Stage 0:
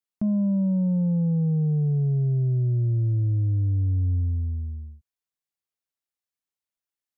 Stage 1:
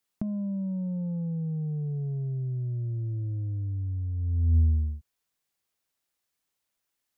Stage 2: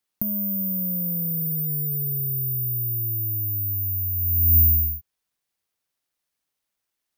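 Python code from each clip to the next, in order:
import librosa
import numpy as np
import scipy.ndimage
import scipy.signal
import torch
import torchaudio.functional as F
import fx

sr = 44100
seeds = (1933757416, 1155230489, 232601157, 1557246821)

y1 = fx.over_compress(x, sr, threshold_db=-28.0, ratio=-0.5)
y1 = F.gain(torch.from_numpy(y1), 2.0).numpy()
y2 = (np.kron(scipy.signal.resample_poly(y1, 1, 3), np.eye(3)[0]) * 3)[:len(y1)]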